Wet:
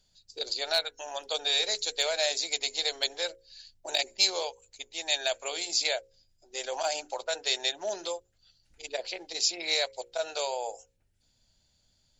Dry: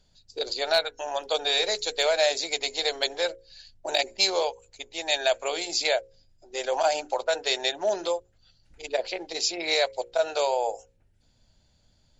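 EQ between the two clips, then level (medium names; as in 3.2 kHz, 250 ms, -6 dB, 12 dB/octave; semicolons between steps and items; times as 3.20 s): treble shelf 2.6 kHz +10.5 dB; -8.5 dB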